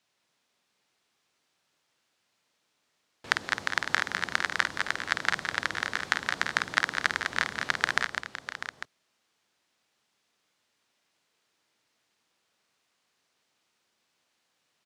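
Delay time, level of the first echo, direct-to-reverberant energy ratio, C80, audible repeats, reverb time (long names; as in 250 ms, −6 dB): 50 ms, −7.5 dB, no reverb audible, no reverb audible, 6, no reverb audible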